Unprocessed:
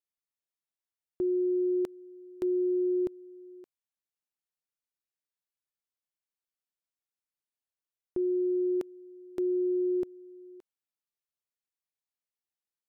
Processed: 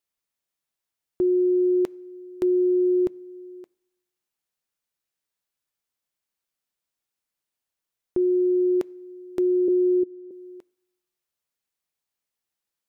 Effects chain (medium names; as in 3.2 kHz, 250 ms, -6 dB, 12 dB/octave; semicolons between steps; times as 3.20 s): 9.68–10.31 s: four-pole ladder low-pass 410 Hz, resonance 65%; on a send: reverberation RT60 1.1 s, pre-delay 3 ms, DRR 19 dB; on the sum: trim +7.5 dB